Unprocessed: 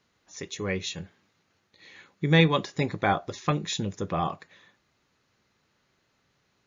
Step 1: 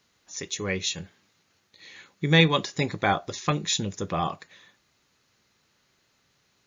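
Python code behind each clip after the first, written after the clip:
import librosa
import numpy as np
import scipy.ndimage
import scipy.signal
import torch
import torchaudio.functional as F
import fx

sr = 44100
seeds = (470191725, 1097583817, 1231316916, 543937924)

y = fx.high_shelf(x, sr, hz=3200.0, db=9.0)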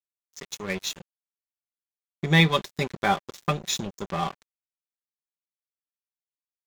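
y = x + 0.52 * np.pad(x, (int(5.1 * sr / 1000.0), 0))[:len(x)]
y = np.sign(y) * np.maximum(np.abs(y) - 10.0 ** (-32.5 / 20.0), 0.0)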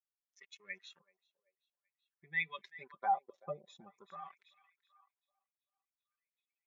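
y = fx.spec_expand(x, sr, power=2.0)
y = fx.echo_banded(y, sr, ms=384, feedback_pct=60, hz=2600.0, wet_db=-17.5)
y = fx.wah_lfo(y, sr, hz=0.5, low_hz=550.0, high_hz=2300.0, q=3.7)
y = y * librosa.db_to_amplitude(-4.5)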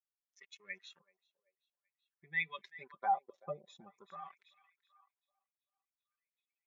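y = x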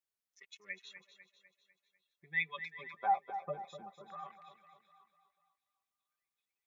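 y = fx.echo_feedback(x, sr, ms=249, feedback_pct=51, wet_db=-11)
y = y * librosa.db_to_amplitude(1.0)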